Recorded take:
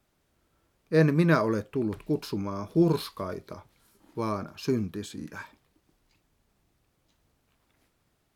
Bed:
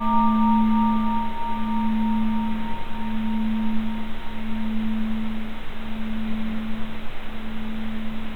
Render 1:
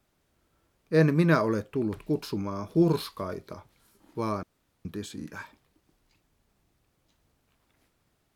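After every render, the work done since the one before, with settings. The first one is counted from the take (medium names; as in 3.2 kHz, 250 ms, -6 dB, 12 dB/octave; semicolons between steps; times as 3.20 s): 4.43–4.85 s: room tone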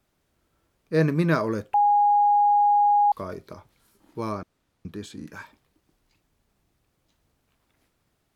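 1.74–3.12 s: bleep 823 Hz -15.5 dBFS; 4.34–5.27 s: treble shelf 11 kHz -8.5 dB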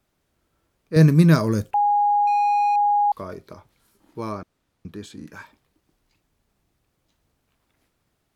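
0.96–1.71 s: tone controls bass +12 dB, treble +13 dB; 2.27–2.76 s: power-law waveshaper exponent 1.4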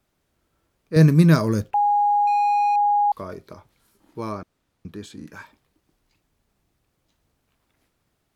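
1.61–2.56 s: median filter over 5 samples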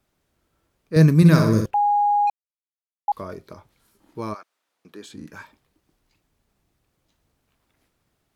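1.16–1.66 s: flutter echo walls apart 10.8 m, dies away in 0.68 s; 2.30–3.08 s: mute; 4.33–5.07 s: high-pass 1.1 kHz -> 290 Hz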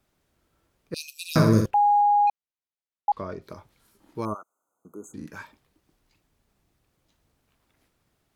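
0.94–1.36 s: brick-wall FIR high-pass 2.4 kHz; 2.01–3.42 s: distance through air 95 m; 4.25–5.14 s: brick-wall FIR band-stop 1.5–6.1 kHz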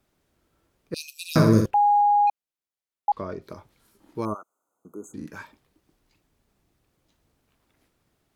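peaking EQ 330 Hz +2.5 dB 1.5 oct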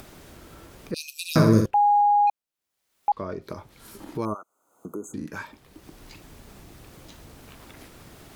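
upward compressor, threshold -27 dBFS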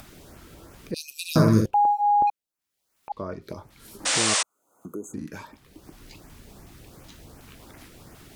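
LFO notch saw up 2.7 Hz 350–4300 Hz; 4.05–4.43 s: painted sound noise 450–9500 Hz -23 dBFS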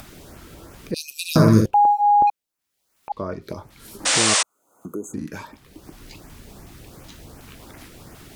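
trim +4.5 dB; peak limiter -3 dBFS, peak gain reduction 2 dB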